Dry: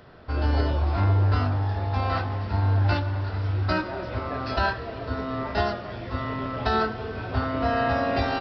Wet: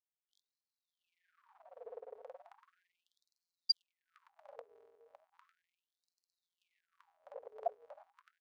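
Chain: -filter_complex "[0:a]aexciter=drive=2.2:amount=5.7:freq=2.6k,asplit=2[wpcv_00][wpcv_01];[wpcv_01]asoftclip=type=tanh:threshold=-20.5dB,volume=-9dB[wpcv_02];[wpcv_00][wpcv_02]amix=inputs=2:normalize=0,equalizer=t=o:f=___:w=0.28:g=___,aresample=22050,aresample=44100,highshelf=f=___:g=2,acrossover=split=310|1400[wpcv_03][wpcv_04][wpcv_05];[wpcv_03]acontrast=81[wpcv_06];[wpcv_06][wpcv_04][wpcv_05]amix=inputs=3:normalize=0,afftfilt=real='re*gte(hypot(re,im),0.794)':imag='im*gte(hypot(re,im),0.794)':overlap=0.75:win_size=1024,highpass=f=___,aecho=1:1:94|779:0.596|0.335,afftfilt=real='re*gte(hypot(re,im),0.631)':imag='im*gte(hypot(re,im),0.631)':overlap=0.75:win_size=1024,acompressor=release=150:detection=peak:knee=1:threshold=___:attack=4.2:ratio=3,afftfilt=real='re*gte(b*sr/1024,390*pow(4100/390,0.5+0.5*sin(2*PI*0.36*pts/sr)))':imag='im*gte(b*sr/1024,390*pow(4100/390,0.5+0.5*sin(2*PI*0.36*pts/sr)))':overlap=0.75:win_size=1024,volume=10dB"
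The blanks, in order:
120, 14, 3.4k, 52, -12dB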